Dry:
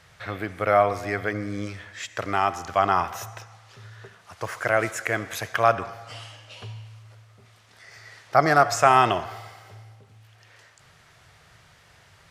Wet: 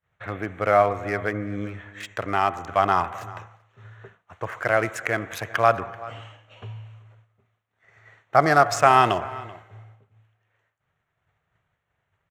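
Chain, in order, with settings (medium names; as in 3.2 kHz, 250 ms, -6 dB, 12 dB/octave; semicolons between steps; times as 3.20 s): local Wiener filter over 9 samples; echo from a far wall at 66 m, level -19 dB; expander -43 dBFS; trim +1 dB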